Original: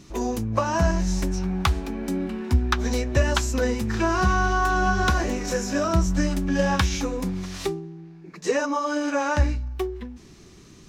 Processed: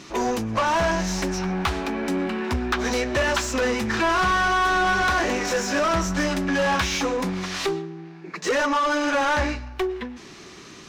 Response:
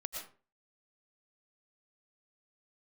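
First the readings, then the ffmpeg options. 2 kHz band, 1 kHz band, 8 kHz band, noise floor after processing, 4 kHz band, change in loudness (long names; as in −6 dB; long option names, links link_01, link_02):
+5.0 dB, +3.5 dB, +2.0 dB, −43 dBFS, +4.5 dB, +1.5 dB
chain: -filter_complex "[0:a]asplit=2[link_01][link_02];[link_02]highpass=frequency=720:poles=1,volume=25dB,asoftclip=type=tanh:threshold=-8dB[link_03];[link_01][link_03]amix=inputs=2:normalize=0,lowpass=frequency=3000:poles=1,volume=-6dB,asplit=2[link_04][link_05];[link_05]highpass=780,lowpass=6900[link_06];[1:a]atrim=start_sample=2205[link_07];[link_06][link_07]afir=irnorm=-1:irlink=0,volume=-13dB[link_08];[link_04][link_08]amix=inputs=2:normalize=0,volume=-6dB"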